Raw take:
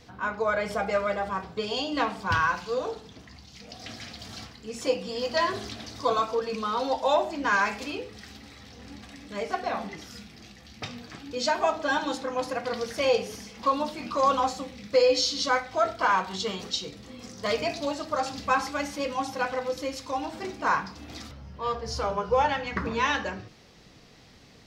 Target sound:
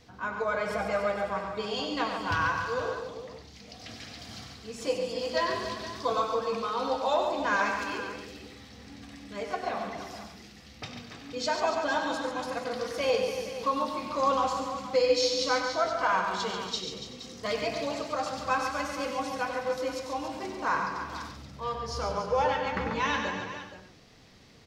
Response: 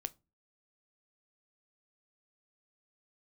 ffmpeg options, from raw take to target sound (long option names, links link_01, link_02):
-filter_complex "[0:a]aecho=1:1:139|284|470:0.422|0.316|0.237,asplit=2[link_01][link_02];[1:a]atrim=start_sample=2205,adelay=96[link_03];[link_02][link_03]afir=irnorm=-1:irlink=0,volume=-6.5dB[link_04];[link_01][link_04]amix=inputs=2:normalize=0,volume=-4dB"